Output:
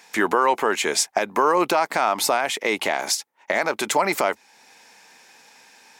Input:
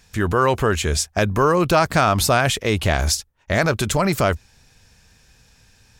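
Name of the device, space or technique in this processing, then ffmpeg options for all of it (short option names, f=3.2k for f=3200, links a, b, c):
laptop speaker: -af "highpass=f=260:w=0.5412,highpass=f=260:w=1.3066,equalizer=f=870:t=o:w=0.56:g=10,equalizer=f=2.1k:t=o:w=0.37:g=7.5,alimiter=limit=-12.5dB:level=0:latency=1:release=445,volume=4dB"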